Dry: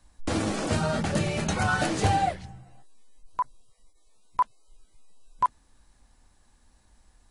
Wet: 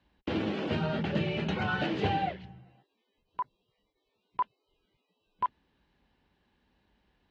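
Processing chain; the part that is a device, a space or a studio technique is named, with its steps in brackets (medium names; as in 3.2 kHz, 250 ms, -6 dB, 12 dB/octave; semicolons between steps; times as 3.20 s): guitar cabinet (cabinet simulation 82–3700 Hz, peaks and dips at 96 Hz -4 dB, 180 Hz +4 dB, 390 Hz +6 dB, 700 Hz -3 dB, 1.2 kHz -5 dB, 2.9 kHz +6 dB); trim -4.5 dB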